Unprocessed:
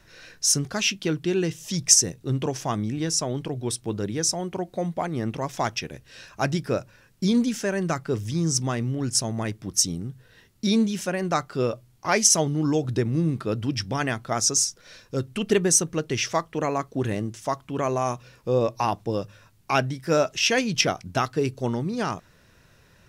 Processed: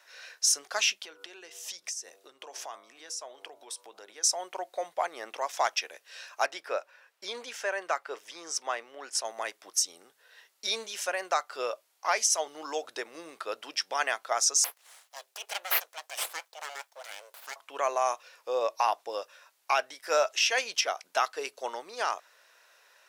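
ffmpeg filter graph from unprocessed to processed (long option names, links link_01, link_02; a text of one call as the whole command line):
ffmpeg -i in.wav -filter_complex "[0:a]asettb=1/sr,asplit=3[link_01][link_02][link_03];[link_01]atrim=end=0.974[link_04];[link_02]atrim=start=0.97:end=4.24,asetpts=PTS-STARTPTS,afade=type=in:duration=0.004:curve=qsin,afade=type=out:start_time=3.266:duration=0.004:curve=qsin,bandreject=frequency=97.61:width_type=h:width=4,bandreject=frequency=195.22:width_type=h:width=4,bandreject=frequency=292.83:width_type=h:width=4,bandreject=frequency=390.44:width_type=h:width=4,bandreject=frequency=488.05:width_type=h:width=4,bandreject=frequency=585.66:width_type=h:width=4,bandreject=frequency=683.27:width_type=h:width=4,bandreject=frequency=780.88:width_type=h:width=4,bandreject=frequency=878.49:width_type=h:width=4,bandreject=frequency=976.1:width_type=h:width=4,bandreject=frequency=1073.71:width_type=h:width=4,bandreject=frequency=1171.32:width_type=h:width=4,bandreject=frequency=1268.93:width_type=h:width=4,bandreject=frequency=1366.54:width_type=h:width=4,bandreject=frequency=1464.15:width_type=h:width=4,acompressor=threshold=-33dB:ratio=12:attack=3.2:release=140:knee=1:detection=peak[link_05];[link_03]atrim=start=4.236[link_06];[link_04][link_05]acrossfade=duration=0.004:curve1=hsin:curve2=qsin[link_07];[link_07][link_06]acrossfade=duration=0.004:curve1=qsin:curve2=hsin,asettb=1/sr,asplit=3[link_08][link_09][link_10];[link_08]atrim=end=6.464[link_11];[link_09]atrim=start=6.46:end=9.25,asetpts=PTS-STARTPTS,afade=type=in:duration=0.004:curve=qsin,afade=type=out:start_time=2.786:duration=0.004:curve=qsin,highpass=51,bass=frequency=250:gain=-7,treble=frequency=4000:gain=-9[link_12];[link_10]atrim=start=9.246[link_13];[link_11][link_12]acrossfade=duration=0.004:curve1=hsin:curve2=qsin[link_14];[link_14][link_13]acrossfade=duration=0.004:curve1=qsin:curve2=hsin,asettb=1/sr,asplit=3[link_15][link_16][link_17];[link_15]atrim=end=14.644[link_18];[link_16]atrim=start=14.64:end=17.56,asetpts=PTS-STARTPTS,afade=type=in:duration=0.004:curve=qsin,afade=type=out:start_time=2.916:duration=0.004:curve=qsin,highpass=frequency=240:width=0.5412,highpass=frequency=240:width=1.3066,equalizer=frequency=540:width_type=o:width=2.2:gain=-14,aeval=exprs='abs(val(0))':channel_layout=same[link_19];[link_17]atrim=start=17.556[link_20];[link_18][link_19]acrossfade=duration=0.004:curve1=hsin:curve2=qsin[link_21];[link_21][link_20]acrossfade=duration=0.004:curve1=qsin:curve2=hsin,highpass=frequency=590:width=0.5412,highpass=frequency=590:width=1.3066,alimiter=limit=-14dB:level=0:latency=1:release=196" out.wav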